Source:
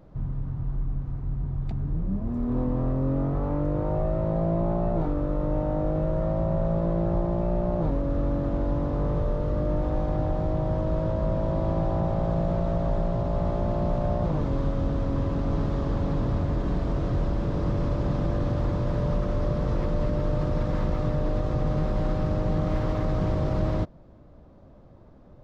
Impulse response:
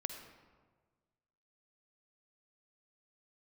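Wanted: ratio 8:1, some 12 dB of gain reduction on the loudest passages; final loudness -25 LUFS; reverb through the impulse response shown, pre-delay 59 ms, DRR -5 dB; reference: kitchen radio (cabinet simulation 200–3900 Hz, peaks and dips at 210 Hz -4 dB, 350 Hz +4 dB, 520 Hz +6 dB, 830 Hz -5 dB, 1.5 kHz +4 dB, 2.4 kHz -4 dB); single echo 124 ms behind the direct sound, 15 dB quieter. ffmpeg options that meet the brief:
-filter_complex "[0:a]acompressor=threshold=0.02:ratio=8,aecho=1:1:124:0.178,asplit=2[s0][s1];[1:a]atrim=start_sample=2205,adelay=59[s2];[s1][s2]afir=irnorm=-1:irlink=0,volume=1.88[s3];[s0][s3]amix=inputs=2:normalize=0,highpass=200,equalizer=f=210:t=q:w=4:g=-4,equalizer=f=350:t=q:w=4:g=4,equalizer=f=520:t=q:w=4:g=6,equalizer=f=830:t=q:w=4:g=-5,equalizer=f=1500:t=q:w=4:g=4,equalizer=f=2400:t=q:w=4:g=-4,lowpass=f=3900:w=0.5412,lowpass=f=3900:w=1.3066,volume=2.82"

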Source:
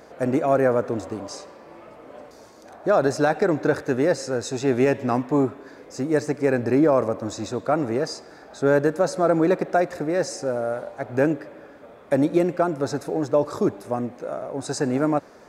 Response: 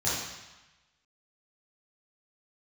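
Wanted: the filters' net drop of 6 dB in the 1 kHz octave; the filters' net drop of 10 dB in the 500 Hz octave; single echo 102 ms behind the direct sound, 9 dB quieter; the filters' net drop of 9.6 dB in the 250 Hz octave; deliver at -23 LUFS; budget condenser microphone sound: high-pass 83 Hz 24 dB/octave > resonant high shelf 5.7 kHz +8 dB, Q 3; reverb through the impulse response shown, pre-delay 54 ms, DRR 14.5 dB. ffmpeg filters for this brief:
-filter_complex "[0:a]equalizer=f=250:t=o:g=-9,equalizer=f=500:t=o:g=-9,equalizer=f=1000:t=o:g=-3.5,aecho=1:1:102:0.355,asplit=2[s0][s1];[1:a]atrim=start_sample=2205,adelay=54[s2];[s1][s2]afir=irnorm=-1:irlink=0,volume=0.0596[s3];[s0][s3]amix=inputs=2:normalize=0,highpass=f=83:w=0.5412,highpass=f=83:w=1.3066,highshelf=f=5700:t=q:w=3:g=8,volume=1.88"

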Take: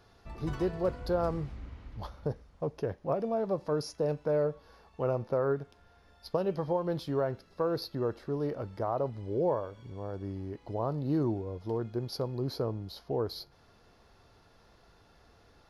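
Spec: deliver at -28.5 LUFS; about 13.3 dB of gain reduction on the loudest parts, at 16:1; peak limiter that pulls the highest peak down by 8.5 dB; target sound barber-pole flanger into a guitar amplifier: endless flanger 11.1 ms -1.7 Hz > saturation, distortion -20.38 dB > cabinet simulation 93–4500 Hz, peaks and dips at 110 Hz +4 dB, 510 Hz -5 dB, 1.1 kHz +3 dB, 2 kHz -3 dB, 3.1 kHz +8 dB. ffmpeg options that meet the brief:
-filter_complex "[0:a]acompressor=threshold=0.0126:ratio=16,alimiter=level_in=3.76:limit=0.0631:level=0:latency=1,volume=0.266,asplit=2[s0][s1];[s1]adelay=11.1,afreqshift=-1.7[s2];[s0][s2]amix=inputs=2:normalize=1,asoftclip=threshold=0.0119,highpass=93,equalizer=f=110:t=q:w=4:g=4,equalizer=f=510:t=q:w=4:g=-5,equalizer=f=1100:t=q:w=4:g=3,equalizer=f=2000:t=q:w=4:g=-3,equalizer=f=3100:t=q:w=4:g=8,lowpass=f=4500:w=0.5412,lowpass=f=4500:w=1.3066,volume=13.3"

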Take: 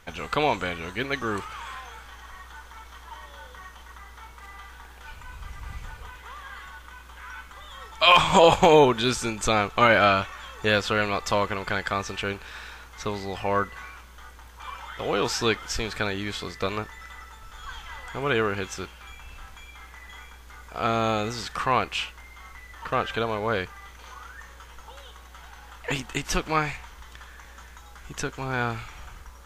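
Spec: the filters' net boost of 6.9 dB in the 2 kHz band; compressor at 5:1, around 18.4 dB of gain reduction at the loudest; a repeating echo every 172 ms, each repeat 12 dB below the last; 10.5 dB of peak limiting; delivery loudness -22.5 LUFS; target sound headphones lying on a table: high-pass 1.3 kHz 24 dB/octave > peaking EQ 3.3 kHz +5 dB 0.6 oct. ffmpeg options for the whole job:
-af "equalizer=f=2000:t=o:g=8.5,acompressor=threshold=0.0316:ratio=5,alimiter=limit=0.0631:level=0:latency=1,highpass=f=1300:w=0.5412,highpass=f=1300:w=1.3066,equalizer=f=3300:t=o:w=0.6:g=5,aecho=1:1:172|344|516:0.251|0.0628|0.0157,volume=5.31"

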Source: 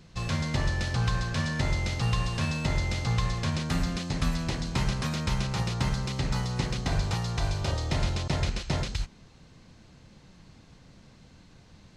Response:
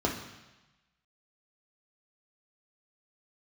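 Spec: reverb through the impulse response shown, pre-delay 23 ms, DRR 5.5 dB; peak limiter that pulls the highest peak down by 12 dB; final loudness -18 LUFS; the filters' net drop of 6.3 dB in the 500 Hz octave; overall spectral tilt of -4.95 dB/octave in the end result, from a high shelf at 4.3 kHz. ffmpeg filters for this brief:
-filter_complex "[0:a]equalizer=f=500:t=o:g=-8.5,highshelf=f=4300:g=3,alimiter=level_in=1.26:limit=0.0631:level=0:latency=1,volume=0.794,asplit=2[s0][s1];[1:a]atrim=start_sample=2205,adelay=23[s2];[s1][s2]afir=irnorm=-1:irlink=0,volume=0.168[s3];[s0][s3]amix=inputs=2:normalize=0,volume=5.96"

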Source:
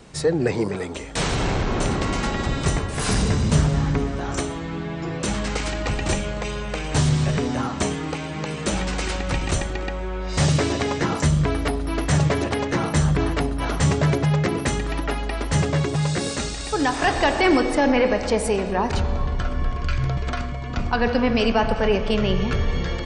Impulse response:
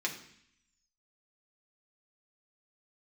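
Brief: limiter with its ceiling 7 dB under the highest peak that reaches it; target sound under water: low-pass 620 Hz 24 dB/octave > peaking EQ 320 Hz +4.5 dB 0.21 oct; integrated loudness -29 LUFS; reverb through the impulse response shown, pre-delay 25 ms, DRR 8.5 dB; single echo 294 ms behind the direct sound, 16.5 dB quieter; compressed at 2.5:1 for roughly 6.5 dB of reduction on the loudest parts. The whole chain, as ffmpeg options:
-filter_complex "[0:a]acompressor=threshold=0.0794:ratio=2.5,alimiter=limit=0.141:level=0:latency=1,aecho=1:1:294:0.15,asplit=2[s0][s1];[1:a]atrim=start_sample=2205,adelay=25[s2];[s1][s2]afir=irnorm=-1:irlink=0,volume=0.224[s3];[s0][s3]amix=inputs=2:normalize=0,lowpass=f=620:w=0.5412,lowpass=f=620:w=1.3066,equalizer=f=320:t=o:w=0.21:g=4.5,volume=0.891"

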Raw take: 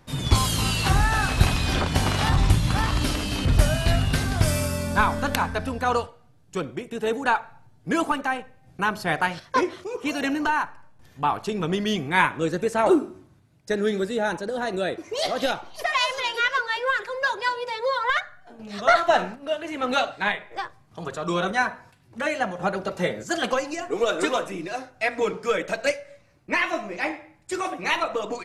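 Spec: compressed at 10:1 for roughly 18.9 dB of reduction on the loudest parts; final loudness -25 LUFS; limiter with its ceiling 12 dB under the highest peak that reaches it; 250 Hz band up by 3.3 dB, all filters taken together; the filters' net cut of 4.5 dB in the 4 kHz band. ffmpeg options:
-af "equalizer=f=250:t=o:g=4.5,equalizer=f=4000:t=o:g=-6,acompressor=threshold=0.0251:ratio=10,volume=5.31,alimiter=limit=0.178:level=0:latency=1"

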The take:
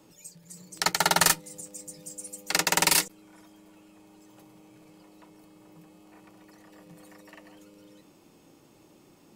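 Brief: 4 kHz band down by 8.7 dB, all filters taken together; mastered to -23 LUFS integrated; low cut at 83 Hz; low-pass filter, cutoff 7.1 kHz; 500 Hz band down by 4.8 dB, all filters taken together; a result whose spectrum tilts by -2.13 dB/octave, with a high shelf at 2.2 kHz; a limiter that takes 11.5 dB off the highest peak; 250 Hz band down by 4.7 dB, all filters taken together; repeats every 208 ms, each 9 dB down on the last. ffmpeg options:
-af "highpass=83,lowpass=7100,equalizer=f=250:t=o:g=-6,equalizer=f=500:t=o:g=-4.5,highshelf=f=2200:g=-4,equalizer=f=4000:t=o:g=-6.5,alimiter=limit=0.0631:level=0:latency=1,aecho=1:1:208|416|624|832:0.355|0.124|0.0435|0.0152,volume=6.68"

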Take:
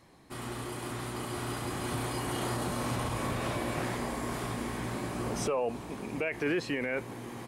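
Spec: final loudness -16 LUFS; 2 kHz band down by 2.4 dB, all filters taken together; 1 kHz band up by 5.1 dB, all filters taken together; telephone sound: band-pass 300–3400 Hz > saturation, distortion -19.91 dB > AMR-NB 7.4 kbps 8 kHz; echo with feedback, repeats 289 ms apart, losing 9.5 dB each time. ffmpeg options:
-af "highpass=300,lowpass=3400,equalizer=f=1000:t=o:g=7.5,equalizer=f=2000:t=o:g=-5,aecho=1:1:289|578|867|1156:0.335|0.111|0.0365|0.012,asoftclip=threshold=0.0668,volume=10.6" -ar 8000 -c:a libopencore_amrnb -b:a 7400

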